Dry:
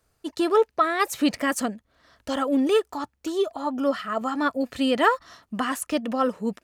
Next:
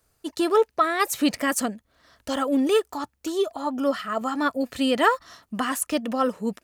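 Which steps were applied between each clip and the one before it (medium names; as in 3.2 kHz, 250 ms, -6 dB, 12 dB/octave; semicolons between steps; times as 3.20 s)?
treble shelf 6.8 kHz +7 dB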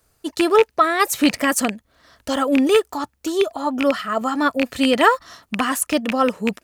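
rattle on loud lows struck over -30 dBFS, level -13 dBFS; trim +5 dB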